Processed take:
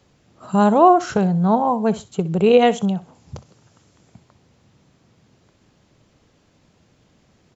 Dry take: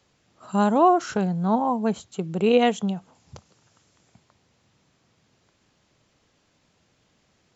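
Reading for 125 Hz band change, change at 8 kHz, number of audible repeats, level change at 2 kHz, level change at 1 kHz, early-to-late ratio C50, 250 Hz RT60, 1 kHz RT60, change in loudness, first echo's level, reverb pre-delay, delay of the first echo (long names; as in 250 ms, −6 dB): +7.0 dB, can't be measured, 2, +3.5 dB, +5.5 dB, no reverb audible, no reverb audible, no reverb audible, +5.5 dB, −17.0 dB, no reverb audible, 63 ms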